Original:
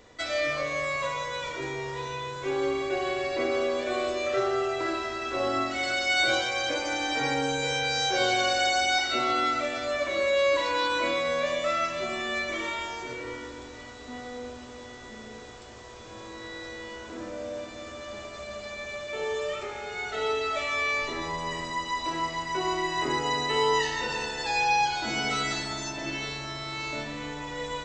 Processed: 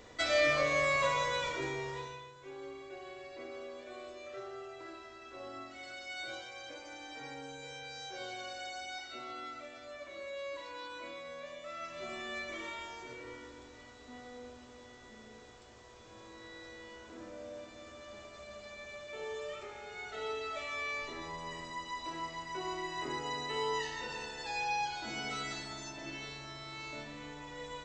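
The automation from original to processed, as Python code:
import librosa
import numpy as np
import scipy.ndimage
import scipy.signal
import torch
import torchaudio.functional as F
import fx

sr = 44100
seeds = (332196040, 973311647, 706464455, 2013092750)

y = fx.gain(x, sr, db=fx.line((1.28, 0.0), (1.97, -6.5), (2.34, -18.5), (11.67, -18.5), (12.09, -10.5)))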